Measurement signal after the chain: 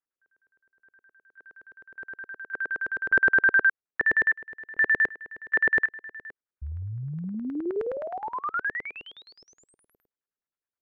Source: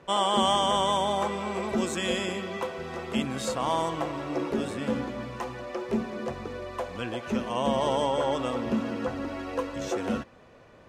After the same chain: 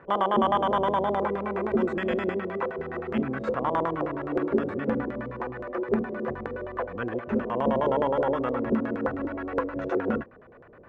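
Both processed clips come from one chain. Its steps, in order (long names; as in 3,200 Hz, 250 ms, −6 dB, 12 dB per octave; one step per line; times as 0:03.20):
auto-filter low-pass square 9.6 Hz 430–1,600 Hz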